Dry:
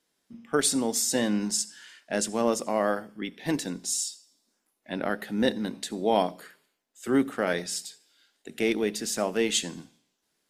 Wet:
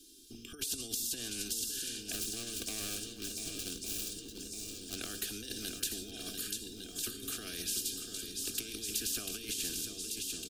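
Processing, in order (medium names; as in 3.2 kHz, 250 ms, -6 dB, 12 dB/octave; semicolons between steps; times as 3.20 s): 2.12–4.99 s: median filter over 41 samples; comb 2.5 ms, depth 63%; compressor with a negative ratio -32 dBFS, ratio -1; Chebyshev band-stop 270–3000 Hz, order 2; bass shelf 450 Hz +4 dB; static phaser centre 540 Hz, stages 6; shuffle delay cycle 1156 ms, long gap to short 1.5:1, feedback 47%, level -12 dB; dynamic bell 110 Hz, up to +4 dB, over -49 dBFS, Q 0.77; spectrum-flattening compressor 4:1; trim -1.5 dB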